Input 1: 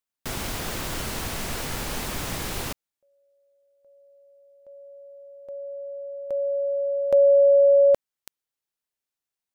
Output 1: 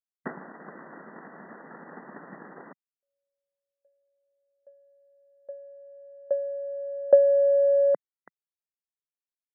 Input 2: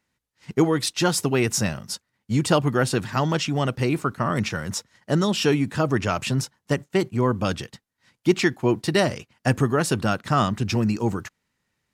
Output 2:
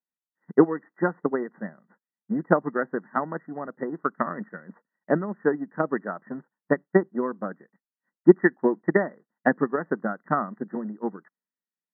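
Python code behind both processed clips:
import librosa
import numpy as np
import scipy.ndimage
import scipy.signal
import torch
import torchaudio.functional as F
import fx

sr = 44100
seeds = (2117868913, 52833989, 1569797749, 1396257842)

y = fx.transient(x, sr, attack_db=12, sustain_db=-6)
y = fx.brickwall_bandpass(y, sr, low_hz=160.0, high_hz=2000.0)
y = fx.band_widen(y, sr, depth_pct=40)
y = F.gain(torch.from_numpy(y), -8.5).numpy()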